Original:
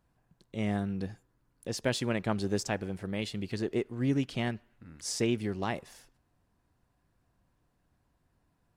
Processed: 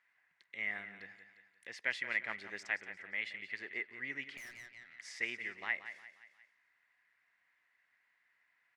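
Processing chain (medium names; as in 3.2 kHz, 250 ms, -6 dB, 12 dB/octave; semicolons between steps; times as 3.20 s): band-pass filter 2 kHz, Q 8.8; feedback delay 176 ms, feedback 37%, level -12 dB; 4.37–4.99 s: valve stage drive 59 dB, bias 0.4; tape noise reduction on one side only encoder only; trim +11.5 dB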